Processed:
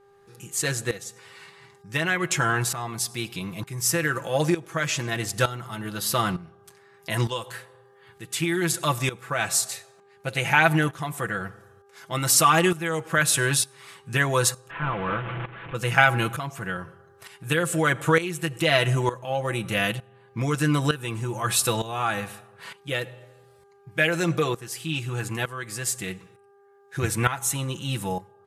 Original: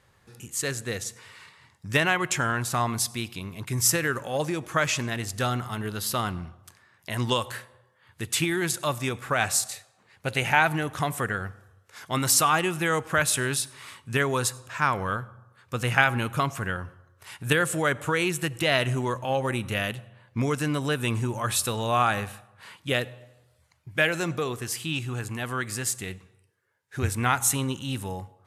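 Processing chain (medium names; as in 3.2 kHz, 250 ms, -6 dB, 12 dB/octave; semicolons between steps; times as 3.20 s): 14.70–15.75 s: one-bit delta coder 16 kbps, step -29.5 dBFS; comb 6 ms, depth 66%; tremolo saw up 1.1 Hz, depth 80%; mains buzz 400 Hz, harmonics 4, -61 dBFS -8 dB/octave; trim +4 dB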